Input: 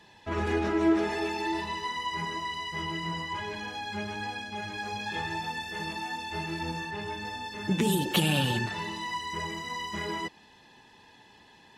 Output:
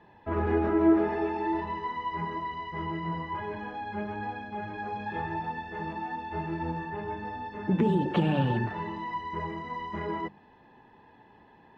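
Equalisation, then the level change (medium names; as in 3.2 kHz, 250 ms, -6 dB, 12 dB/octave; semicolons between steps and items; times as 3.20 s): low-pass 1.3 kHz 12 dB/octave; hum notches 50/100/150/200 Hz; +2.5 dB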